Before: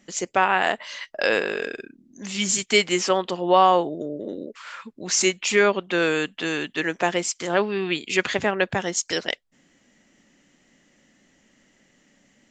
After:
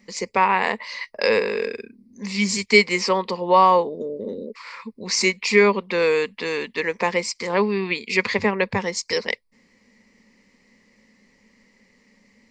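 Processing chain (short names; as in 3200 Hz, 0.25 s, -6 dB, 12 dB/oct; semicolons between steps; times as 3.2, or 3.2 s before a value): ripple EQ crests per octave 0.9, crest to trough 13 dB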